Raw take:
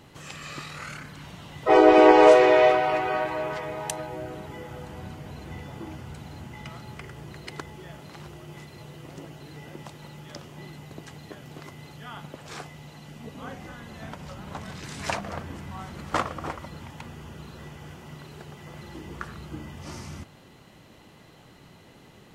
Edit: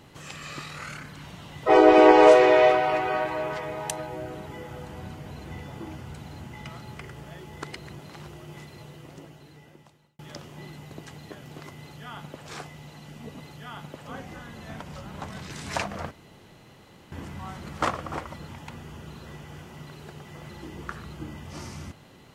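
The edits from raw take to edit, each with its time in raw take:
7.24–7.99 s: reverse
8.69–10.19 s: fade out
11.80–12.47 s: copy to 13.40 s
15.44 s: insert room tone 1.01 s

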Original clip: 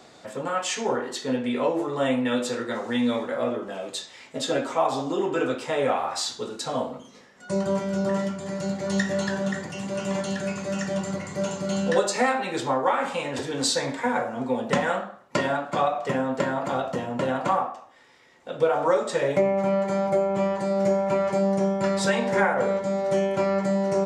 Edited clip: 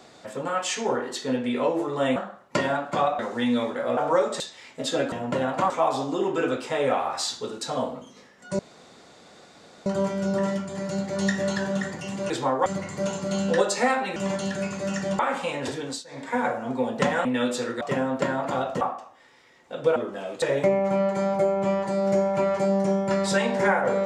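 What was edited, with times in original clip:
2.16–2.72 s: swap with 14.96–15.99 s
3.50–3.96 s: swap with 18.72–19.15 s
7.57 s: insert room tone 1.27 s
10.01–11.04 s: swap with 12.54–12.90 s
13.44–14.09 s: dip -23 dB, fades 0.31 s
16.99–17.57 s: move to 4.68 s

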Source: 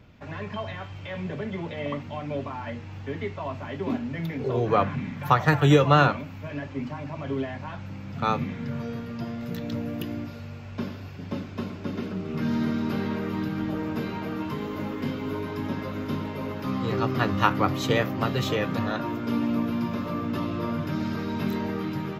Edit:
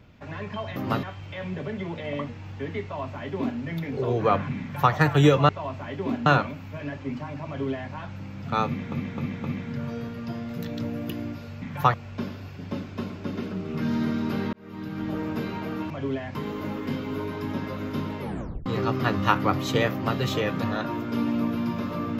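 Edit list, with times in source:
2.02–2.76 s: delete
3.30–4.07 s: copy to 5.96 s
5.08–5.40 s: copy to 10.54 s
7.17–7.62 s: copy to 14.50 s
8.36–8.62 s: loop, 4 plays
13.13–13.75 s: fade in
16.36 s: tape stop 0.45 s
18.07–18.34 s: copy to 0.76 s

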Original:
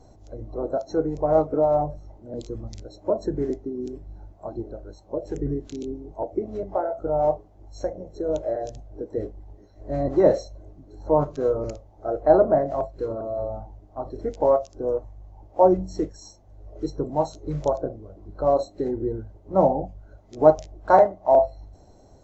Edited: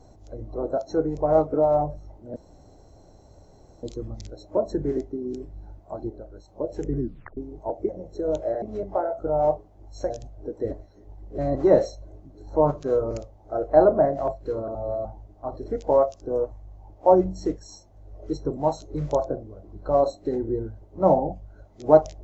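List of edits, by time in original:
2.36 s: insert room tone 1.47 s
4.63–5.01 s: gain -3.5 dB
5.52 s: tape stop 0.38 s
7.90–8.63 s: move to 6.42 s
9.24–9.91 s: reverse
13.28–13.58 s: reverse

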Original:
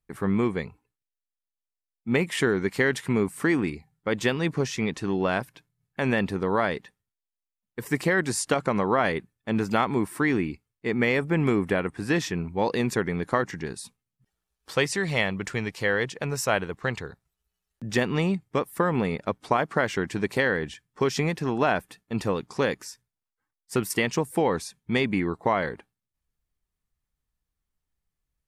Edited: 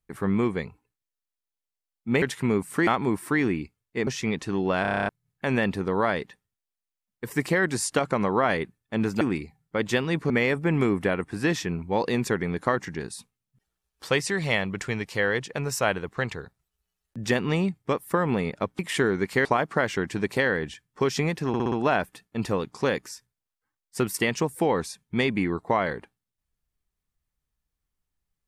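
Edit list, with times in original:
2.22–2.88 s: move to 19.45 s
3.53–4.62 s: swap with 9.76–10.96 s
5.37 s: stutter in place 0.03 s, 9 plays
21.48 s: stutter 0.06 s, 5 plays

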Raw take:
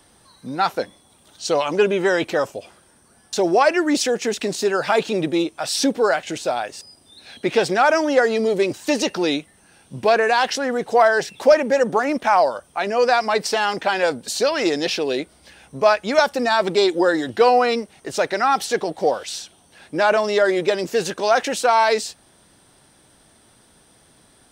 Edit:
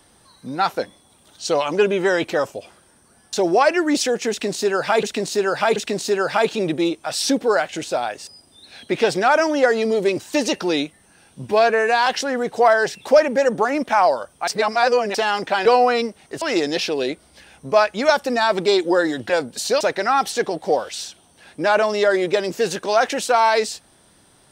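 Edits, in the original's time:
4.30–5.03 s: loop, 3 plays
10.02–10.41 s: stretch 1.5×
12.82–13.49 s: reverse
14.00–14.51 s: swap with 17.39–18.15 s

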